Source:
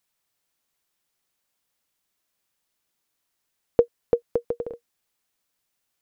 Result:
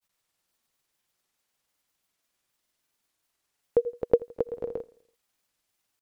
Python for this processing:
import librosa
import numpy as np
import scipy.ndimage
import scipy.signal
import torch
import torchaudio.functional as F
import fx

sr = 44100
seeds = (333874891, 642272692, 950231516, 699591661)

y = fx.granulator(x, sr, seeds[0], grain_ms=100.0, per_s=20.0, spray_ms=100.0, spread_st=0)
y = fx.echo_feedback(y, sr, ms=83, feedback_pct=53, wet_db=-22.5)
y = F.gain(torch.from_numpy(y), 2.0).numpy()